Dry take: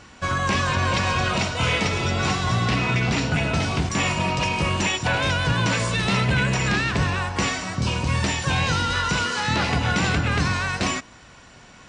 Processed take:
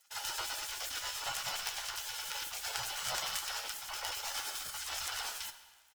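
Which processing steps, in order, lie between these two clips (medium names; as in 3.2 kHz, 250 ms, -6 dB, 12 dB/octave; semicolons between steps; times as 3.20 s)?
median filter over 9 samples; vibrato 0.83 Hz 11 cents; in parallel at -5 dB: companded quantiser 2-bit; on the sum: rotary cabinet horn 5 Hz; spectral gate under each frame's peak -20 dB weak; doubling 32 ms -13 dB; small resonant body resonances 430/710/1500/2600 Hz, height 8 dB, ringing for 45 ms; on a send at -10.5 dB: reverberation RT60 3.1 s, pre-delay 13 ms; on the sum: speed mistake 7.5 ips tape played at 15 ips; trim -6.5 dB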